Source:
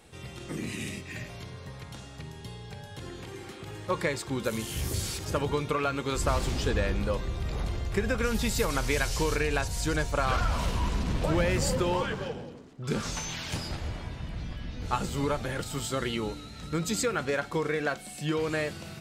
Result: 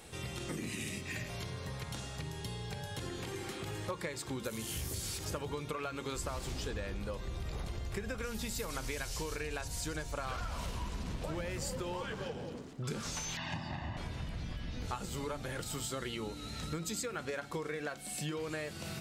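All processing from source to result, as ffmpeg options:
ffmpeg -i in.wav -filter_complex "[0:a]asettb=1/sr,asplit=3[link_01][link_02][link_03];[link_01]atrim=end=13.374[link_04];[link_02]atrim=start=13.37:end=13.97,asetpts=PTS-STARTPTS,afade=type=in:duration=0.004:curve=qsin,afade=type=out:start_time=0.596:duration=0.004:curve=qsin,highpass=130,lowpass=2400,aecho=1:1:1.1:0.98,atrim=end_sample=26460[link_05];[link_03]atrim=start=13.966[link_06];[link_04][link_05]acrossfade=duration=0.004:curve1=hsin:curve2=qsin[link_07];[link_07][link_06]acrossfade=duration=0.004:curve1=qsin:curve2=hsin,highshelf=frequency=5400:gain=5,bandreject=frequency=46.74:width_type=h:width=4,bandreject=frequency=93.48:width_type=h:width=4,bandreject=frequency=140.22:width_type=h:width=4,bandreject=frequency=186.96:width_type=h:width=4,bandreject=frequency=233.7:width_type=h:width=4,bandreject=frequency=280.44:width_type=h:width=4,bandreject=frequency=327.18:width_type=h:width=4,acompressor=threshold=-39dB:ratio=6,volume=2.5dB" out.wav

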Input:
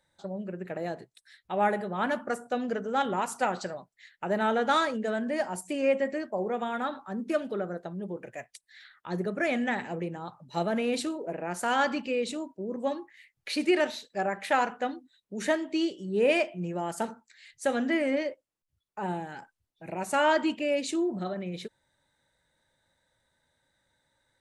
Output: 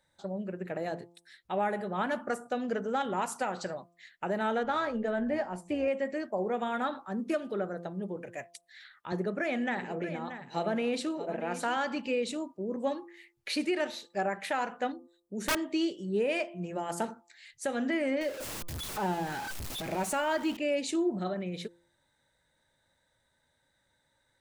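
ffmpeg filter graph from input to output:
ffmpeg -i in.wav -filter_complex "[0:a]asettb=1/sr,asplit=3[link_01][link_02][link_03];[link_01]atrim=end=4.634[link_04];[link_02]atrim=start=4.63:end=5.88,asetpts=PTS-STARTPTS,afade=type=in:duration=0.004:curve=qsin,afade=type=out:start_time=1.246:duration=0.004:curve=qsin,aemphasis=mode=reproduction:type=75fm,tremolo=f=200:d=0.261,asplit=2[link_05][link_06];[link_06]adelay=17,volume=-12dB[link_07];[link_05][link_07]amix=inputs=2:normalize=0,atrim=end_sample=55125[link_08];[link_03]atrim=start=5.876[link_09];[link_04][link_08]acrossfade=duration=0.004:curve1=hsin:curve2=qsin[link_10];[link_10][link_09]acrossfade=duration=0.004:curve1=qsin:curve2=hsin,asettb=1/sr,asplit=3[link_11][link_12][link_13];[link_11]atrim=end=9.124[link_14];[link_12]atrim=start=9.12:end=11.77,asetpts=PTS-STARTPTS,afade=type=in:duration=0.004:curve=qsin,afade=type=out:start_time=2.646:duration=0.004:curve=qsin,highpass=140,highshelf=frequency=9800:gain=-12,aecho=1:1:630:0.211,atrim=end_sample=116865[link_15];[link_13]atrim=start=11.766[link_16];[link_14][link_15]acrossfade=duration=0.004:curve1=hsin:curve2=qsin[link_17];[link_17][link_16]acrossfade=duration=0.004:curve1=qsin:curve2=hsin,asettb=1/sr,asplit=3[link_18][link_19][link_20];[link_18]atrim=end=14.924[link_21];[link_19]atrim=start=14.92:end=15.57,asetpts=PTS-STARTPTS,afade=type=in:duration=0.004:curve=qsin,afade=type=out:start_time=0.646:duration=0.004:curve=qsin,equalizer=frequency=2500:width=0.69:gain=-13,aeval=exprs='(mod(13.3*val(0)+1,2)-1)/13.3':channel_layout=same[link_22];[link_20]atrim=start=15.566[link_23];[link_21][link_22]acrossfade=duration=0.004:curve1=hsin:curve2=qsin[link_24];[link_24][link_23]acrossfade=duration=0.004:curve1=qsin:curve2=hsin,asettb=1/sr,asplit=3[link_25][link_26][link_27];[link_25]atrim=end=18.214[link_28];[link_26]atrim=start=18.21:end=20.57,asetpts=PTS-STARTPTS,afade=type=in:duration=0.004:curve=qsin,afade=type=out:start_time=2.356:duration=0.004:curve=qsin,aeval=exprs='val(0)+0.5*0.015*sgn(val(0))':channel_layout=same,acompressor=mode=upward:threshold=-33dB:ratio=2.5:attack=3.2:release=140:knee=2.83:detection=peak[link_29];[link_27]atrim=start=20.566[link_30];[link_28][link_29]acrossfade=duration=0.004:curve1=hsin:curve2=qsin[link_31];[link_31][link_30]acrossfade=duration=0.004:curve1=qsin:curve2=hsin,bandreject=frequency=172:width_type=h:width=4,bandreject=frequency=344:width_type=h:width=4,bandreject=frequency=516:width_type=h:width=4,bandreject=frequency=688:width_type=h:width=4,bandreject=frequency=860:width_type=h:width=4,bandreject=frequency=1032:width_type=h:width=4,bandreject=frequency=1204:width_type=h:width=4,alimiter=limit=-21dB:level=0:latency=1:release=280" out.wav

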